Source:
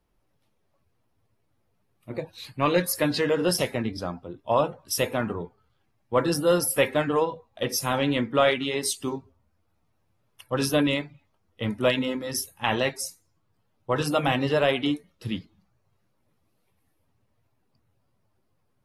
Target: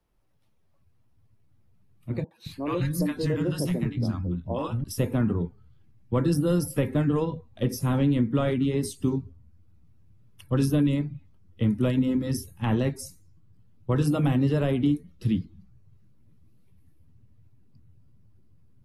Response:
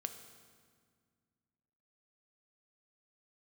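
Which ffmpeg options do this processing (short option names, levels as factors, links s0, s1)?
-filter_complex "[0:a]asubboost=boost=8.5:cutoff=230,acrossover=split=200|1500|7000[s0][s1][s2][s3];[s0]acompressor=threshold=0.0562:ratio=4[s4];[s1]acompressor=threshold=0.0891:ratio=4[s5];[s2]acompressor=threshold=0.00708:ratio=4[s6];[s3]acompressor=threshold=0.0141:ratio=4[s7];[s4][s5][s6][s7]amix=inputs=4:normalize=0,asettb=1/sr,asplit=3[s8][s9][s10];[s8]atrim=end=2.244[s11];[s9]atrim=start=2.24:end=4.84,asetpts=PTS-STARTPTS,afade=t=in:d=0.004:c=qsin,afade=t=out:st=2.596:d=0.004:c=qsin,acrossover=split=240|820[s12][s13][s14];[s14]adelay=70[s15];[s12]adelay=220[s16];[s16][s13][s15]amix=inputs=3:normalize=0,atrim=end_sample=114660[s17];[s10]atrim=start=4.836[s18];[s11][s17]acrossfade=d=0.004:c1=hsin:c2=qsin[s19];[s19][s18]acrossfade=d=0.004:c1=qsin:c2=hsin,volume=0.794"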